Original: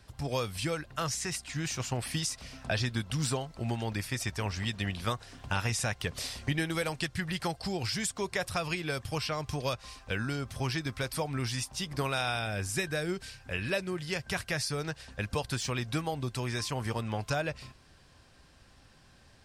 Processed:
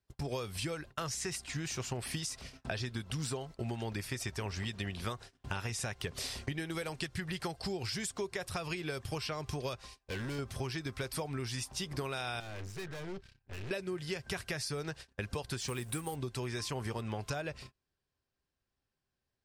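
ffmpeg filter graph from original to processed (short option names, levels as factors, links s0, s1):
-filter_complex "[0:a]asettb=1/sr,asplit=3[s0][s1][s2];[s0]atrim=end=9.874[s3];[s1]atrim=start=9.87:end=10.39,asetpts=PTS-STARTPTS,afade=t=in:d=0.004:c=qsin,afade=t=out:st=0.516:d=0.004:c=qsin,asoftclip=type=hard:threshold=0.0178,equalizer=f=1300:t=o:w=0.22:g=-9[s4];[s2]atrim=start=10.386[s5];[s3][s4]acrossfade=d=0.004:c1=hsin:c2=qsin[s6];[s6][s5]acrossfade=d=0.004:c1=qsin:c2=hsin,asettb=1/sr,asplit=3[s7][s8][s9];[s7]atrim=end=12.404[s10];[s8]atrim=start=12.4:end=13.71,asetpts=PTS-STARTPTS,afade=t=in:d=0.004:c=qsin,afade=t=out:st=1.306:d=0.004:c=qsin,lowpass=4200,asubboost=boost=4.5:cutoff=250,aeval=exprs='(tanh(126*val(0)+0.55)-tanh(0.55))/126':c=same[s11];[s9]atrim=start=13.706[s12];[s10][s11]acrossfade=d=0.004:c1=hsin:c2=qsin[s13];[s13][s12]acrossfade=d=0.004:c1=qsin:c2=hsin,asettb=1/sr,asplit=3[s14][s15][s16];[s14]atrim=end=15.684[s17];[s15]atrim=start=15.68:end=16.16,asetpts=PTS-STARTPTS,afade=t=in:d=0.004:c=qsin,afade=t=out:st=0.476:d=0.004:c=qsin,highshelf=f=7100:t=q:w=3:g=9,bandreject=f=640:w=8.8,acrusher=bits=4:mode=log:mix=0:aa=0.000001[s18];[s16]atrim=start=16.156[s19];[s17][s18]acrossfade=d=0.004:c1=hsin:c2=qsin[s20];[s20][s19]acrossfade=d=0.004:c1=qsin:c2=hsin,agate=range=0.0355:threshold=0.00631:ratio=16:detection=peak,equalizer=f=390:t=o:w=0.28:g=7,acompressor=threshold=0.02:ratio=6"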